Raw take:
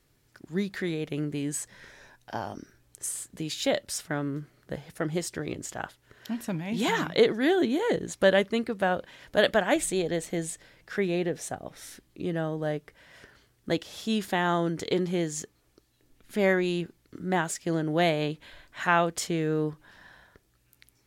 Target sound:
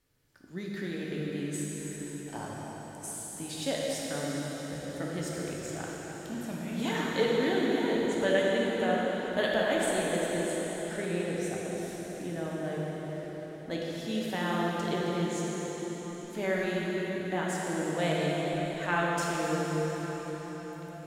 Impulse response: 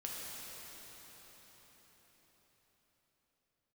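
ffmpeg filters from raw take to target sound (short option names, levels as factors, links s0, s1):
-filter_complex "[1:a]atrim=start_sample=2205[s0];[0:a][s0]afir=irnorm=-1:irlink=0,volume=0.668"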